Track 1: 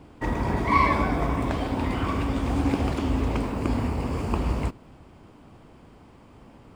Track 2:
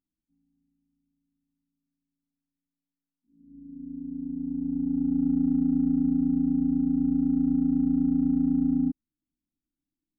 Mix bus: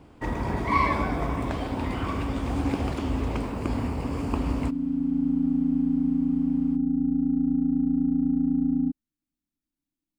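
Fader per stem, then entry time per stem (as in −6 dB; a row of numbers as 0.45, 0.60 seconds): −2.5, 0.0 decibels; 0.00, 0.00 seconds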